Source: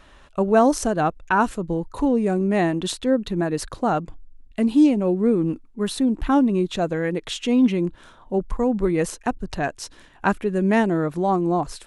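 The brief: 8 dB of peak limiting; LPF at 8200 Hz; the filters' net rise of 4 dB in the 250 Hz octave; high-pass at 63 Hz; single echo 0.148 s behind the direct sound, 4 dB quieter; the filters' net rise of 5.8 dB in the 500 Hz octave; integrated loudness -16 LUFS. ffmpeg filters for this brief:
-af "highpass=63,lowpass=8.2k,equalizer=f=250:t=o:g=3,equalizer=f=500:t=o:g=6.5,alimiter=limit=-10dB:level=0:latency=1,aecho=1:1:148:0.631,volume=2.5dB"

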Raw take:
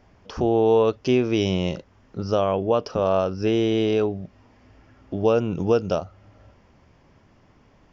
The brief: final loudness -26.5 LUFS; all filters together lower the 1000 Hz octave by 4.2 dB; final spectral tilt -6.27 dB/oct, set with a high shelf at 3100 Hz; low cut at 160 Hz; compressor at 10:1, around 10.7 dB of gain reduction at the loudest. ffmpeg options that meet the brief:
-af "highpass=160,equalizer=f=1k:t=o:g=-5,highshelf=f=3.1k:g=-9,acompressor=threshold=-26dB:ratio=10,volume=5.5dB"

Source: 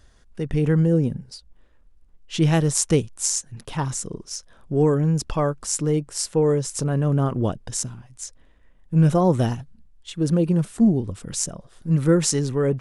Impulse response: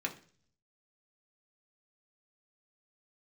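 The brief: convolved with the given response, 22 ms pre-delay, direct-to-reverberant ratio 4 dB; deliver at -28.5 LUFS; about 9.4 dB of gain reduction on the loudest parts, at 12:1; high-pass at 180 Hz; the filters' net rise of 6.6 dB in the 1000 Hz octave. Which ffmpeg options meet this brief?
-filter_complex "[0:a]highpass=180,equalizer=f=1k:t=o:g=8.5,acompressor=threshold=-22dB:ratio=12,asplit=2[a][b];[1:a]atrim=start_sample=2205,adelay=22[c];[b][c]afir=irnorm=-1:irlink=0,volume=-7.5dB[d];[a][d]amix=inputs=2:normalize=0,volume=-1dB"

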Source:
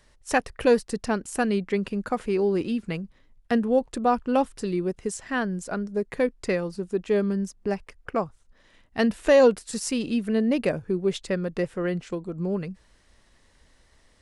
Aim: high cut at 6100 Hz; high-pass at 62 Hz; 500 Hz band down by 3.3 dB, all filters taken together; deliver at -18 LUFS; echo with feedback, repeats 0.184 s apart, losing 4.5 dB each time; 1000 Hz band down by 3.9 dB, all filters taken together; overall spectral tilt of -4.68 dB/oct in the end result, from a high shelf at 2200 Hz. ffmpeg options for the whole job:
-af "highpass=62,lowpass=6.1k,equalizer=f=500:t=o:g=-3,equalizer=f=1k:t=o:g=-6,highshelf=f=2.2k:g=8.5,aecho=1:1:184|368|552|736|920|1104|1288|1472|1656:0.596|0.357|0.214|0.129|0.0772|0.0463|0.0278|0.0167|0.01,volume=7.5dB"

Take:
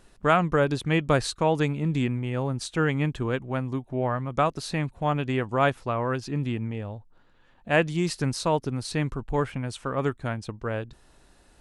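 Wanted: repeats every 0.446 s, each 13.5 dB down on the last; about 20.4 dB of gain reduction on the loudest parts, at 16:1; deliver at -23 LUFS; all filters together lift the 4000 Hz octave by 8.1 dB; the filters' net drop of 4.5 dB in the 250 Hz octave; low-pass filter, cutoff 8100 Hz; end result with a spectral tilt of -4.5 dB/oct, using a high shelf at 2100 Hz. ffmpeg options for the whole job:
-af "lowpass=8.1k,equalizer=f=250:t=o:g=-7,highshelf=f=2.1k:g=5,equalizer=f=4k:t=o:g=5.5,acompressor=threshold=-36dB:ratio=16,aecho=1:1:446|892:0.211|0.0444,volume=17.5dB"

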